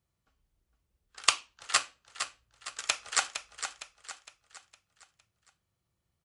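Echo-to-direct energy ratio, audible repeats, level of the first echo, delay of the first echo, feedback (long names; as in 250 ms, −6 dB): −8.0 dB, 4, −9.0 dB, 460 ms, 43%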